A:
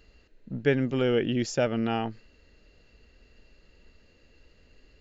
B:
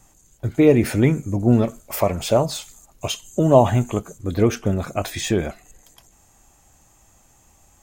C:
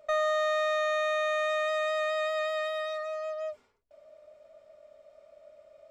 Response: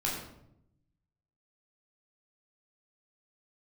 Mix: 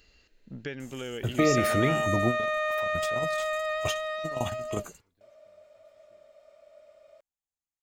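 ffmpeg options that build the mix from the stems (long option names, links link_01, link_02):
-filter_complex "[0:a]acompressor=threshold=-29dB:ratio=6,highshelf=frequency=2900:gain=6.5,volume=-3.5dB,asplit=2[link_01][link_02];[1:a]acrossover=split=290|1900[link_03][link_04][link_05];[link_03]acompressor=threshold=-25dB:ratio=4[link_06];[link_04]acompressor=threshold=-26dB:ratio=4[link_07];[link_05]acompressor=threshold=-38dB:ratio=4[link_08];[link_06][link_07][link_08]amix=inputs=3:normalize=0,adelay=800,volume=0dB[link_09];[2:a]acrossover=split=2800[link_10][link_11];[link_11]acompressor=threshold=-51dB:ratio=4:attack=1:release=60[link_12];[link_10][link_12]amix=inputs=2:normalize=0,adelay=1300,volume=0.5dB[link_13];[link_02]apad=whole_len=380325[link_14];[link_09][link_14]sidechaingate=range=-47dB:threshold=-57dB:ratio=16:detection=peak[link_15];[link_01][link_15][link_13]amix=inputs=3:normalize=0,tiltshelf=frequency=970:gain=-3"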